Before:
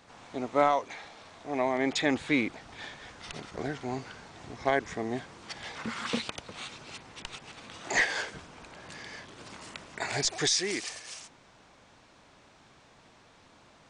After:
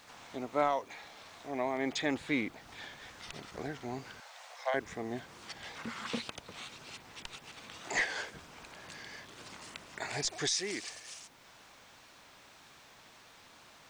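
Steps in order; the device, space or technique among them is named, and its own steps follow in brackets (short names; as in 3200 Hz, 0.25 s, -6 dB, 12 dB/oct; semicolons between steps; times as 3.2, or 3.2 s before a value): 4.2–4.74 steep high-pass 500 Hz 96 dB/oct; noise-reduction cassette on a plain deck (mismatched tape noise reduction encoder only; wow and flutter; white noise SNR 32 dB); gain -5.5 dB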